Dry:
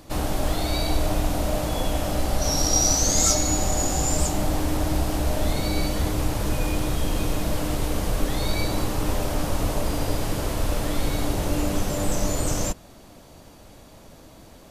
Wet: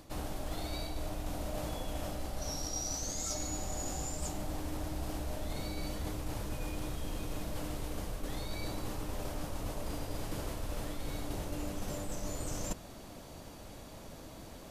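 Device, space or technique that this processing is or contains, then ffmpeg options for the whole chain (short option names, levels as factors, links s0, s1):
compression on the reversed sound: -af "areverse,acompressor=threshold=0.0251:ratio=12,areverse,volume=0.841"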